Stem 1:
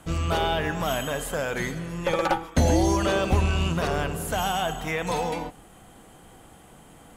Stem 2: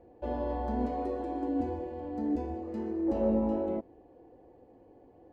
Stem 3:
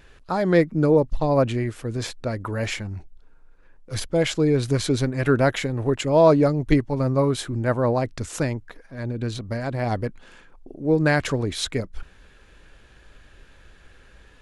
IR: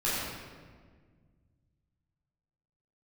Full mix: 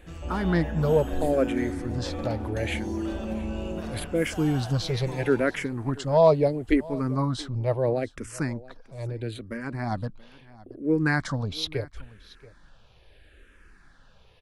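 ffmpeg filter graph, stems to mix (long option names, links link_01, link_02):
-filter_complex "[0:a]acompressor=threshold=-23dB:ratio=6,volume=-14.5dB,asplit=2[link_01][link_02];[link_02]volume=-13.5dB[link_03];[1:a]aemphasis=mode=reproduction:type=bsi,alimiter=level_in=0.5dB:limit=-24dB:level=0:latency=1,volume=-0.5dB,volume=-6.5dB,asplit=2[link_04][link_05];[link_05]volume=-10dB[link_06];[2:a]equalizer=frequency=6900:width=3.6:gain=-7,asplit=2[link_07][link_08];[link_08]afreqshift=-0.75[link_09];[link_07][link_09]amix=inputs=2:normalize=1,volume=-1.5dB,asplit=2[link_10][link_11];[link_11]volume=-21dB[link_12];[3:a]atrim=start_sample=2205[link_13];[link_03][link_06]amix=inputs=2:normalize=0[link_14];[link_14][link_13]afir=irnorm=-1:irlink=0[link_15];[link_12]aecho=0:1:680:1[link_16];[link_01][link_04][link_10][link_15][link_16]amix=inputs=5:normalize=0"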